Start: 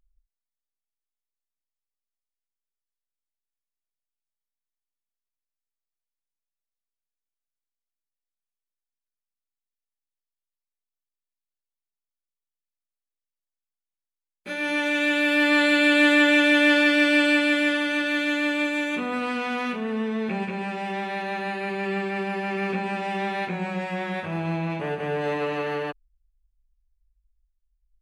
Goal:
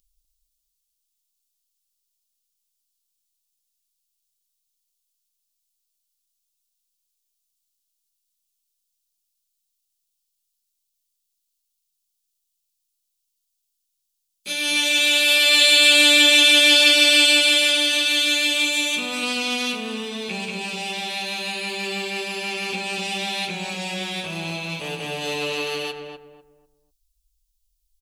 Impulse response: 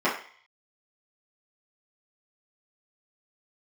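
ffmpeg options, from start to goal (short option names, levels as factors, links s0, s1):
-filter_complex "[0:a]flanger=delay=3.7:depth=4.8:regen=-75:speed=0.16:shape=sinusoidal,asplit=2[s0][s1];[s1]adelay=247,lowpass=f=1100:p=1,volume=0.631,asplit=2[s2][s3];[s3]adelay=247,lowpass=f=1100:p=1,volume=0.32,asplit=2[s4][s5];[s5]adelay=247,lowpass=f=1100:p=1,volume=0.32,asplit=2[s6][s7];[s7]adelay=247,lowpass=f=1100:p=1,volume=0.32[s8];[s0][s2][s4][s6][s8]amix=inputs=5:normalize=0,aexciter=amount=13.4:drive=2.7:freq=2700"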